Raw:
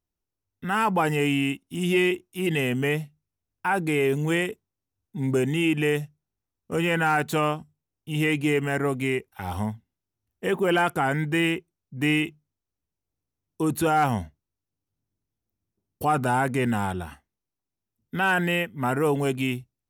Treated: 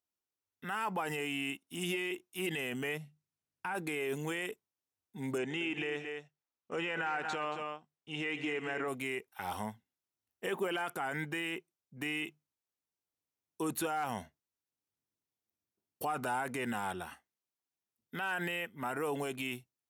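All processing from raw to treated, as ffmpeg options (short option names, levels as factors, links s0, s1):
-filter_complex "[0:a]asettb=1/sr,asplit=3[s0][s1][s2];[s0]atrim=end=2.974[s3];[s1]atrim=start=2.97:end=3.75,asetpts=PTS-STARTPTS,afade=t=in:d=0.004:c=qsin,afade=t=out:st=0.776:d=0.004:c=qsin,lowpass=12000,equalizer=f=150:t=o:w=1.4:g=10.5,acompressor=threshold=0.0316:ratio=4:attack=3.2:release=140:knee=1:detection=peak[s4];[s2]atrim=start=3.746[s5];[s3][s4]acrossfade=d=0.004:c1=hsin:c2=qsin[s6];[s6][s5]acrossfade=d=0.004:c1=qsin:c2=hsin,asettb=1/sr,asplit=3[s7][s8][s9];[s7]atrim=end=5.384[s10];[s8]atrim=start=5.38:end=8.88,asetpts=PTS-STARTPTS,afade=t=in:d=0.004:c=qsin,afade=t=out:st=3.496:d=0.004:c=qsin,lowpass=f=7000:w=0.5412,lowpass=f=7000:w=1.3066,bass=f=250:g=-4,treble=f=4000:g=-5,aecho=1:1:122|226:0.106|0.282,atrim=end_sample=154350[s11];[s9]atrim=start=8.876[s12];[s10][s11]acrossfade=d=0.004:c1=hsin:c2=qsin[s13];[s13][s12]acrossfade=d=0.004:c1=qsin:c2=hsin,highpass=f=580:p=1,alimiter=limit=0.075:level=0:latency=1:release=39,volume=0.708"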